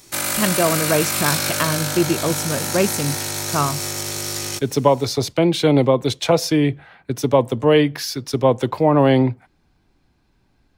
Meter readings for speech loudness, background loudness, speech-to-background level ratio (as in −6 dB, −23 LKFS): −19.5 LKFS, −22.0 LKFS, 2.5 dB